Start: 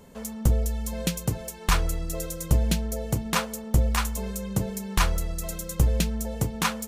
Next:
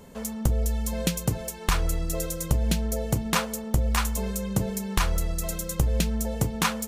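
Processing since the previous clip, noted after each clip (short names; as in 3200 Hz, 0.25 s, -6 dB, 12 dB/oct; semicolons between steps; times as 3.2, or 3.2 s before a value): compressor, threshold -21 dBFS, peak gain reduction 7 dB; gain +2.5 dB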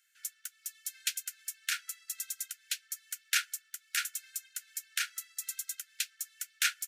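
Chebyshev high-pass 1400 Hz, order 8; upward expander 1.5:1, over -51 dBFS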